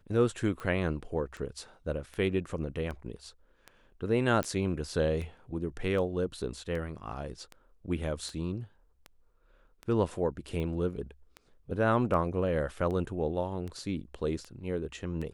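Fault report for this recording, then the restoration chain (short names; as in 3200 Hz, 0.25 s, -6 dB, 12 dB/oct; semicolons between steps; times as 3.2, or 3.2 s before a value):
tick 78 rpm -27 dBFS
4.43 pop -16 dBFS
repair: de-click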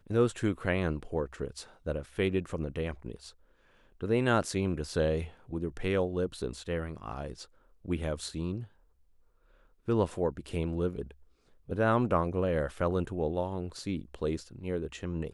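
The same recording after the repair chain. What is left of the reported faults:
none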